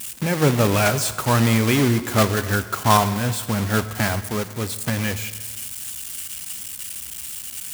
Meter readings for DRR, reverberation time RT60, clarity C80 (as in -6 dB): 11.5 dB, 1.6 s, 14.5 dB